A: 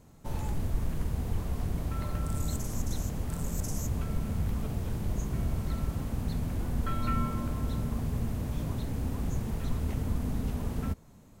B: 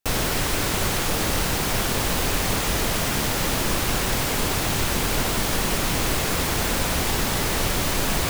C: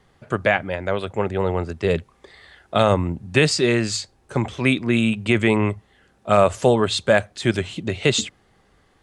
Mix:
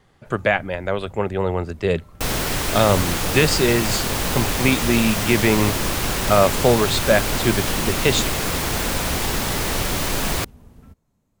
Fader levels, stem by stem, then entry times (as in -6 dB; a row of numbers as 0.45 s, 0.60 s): -14.0 dB, +0.5 dB, 0.0 dB; 0.00 s, 2.15 s, 0.00 s